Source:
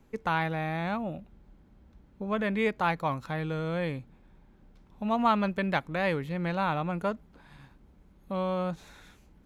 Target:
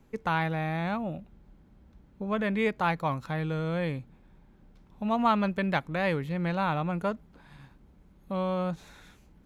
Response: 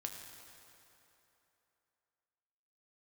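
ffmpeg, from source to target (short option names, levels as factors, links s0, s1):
-af "equalizer=f=150:t=o:w=0.77:g=2.5"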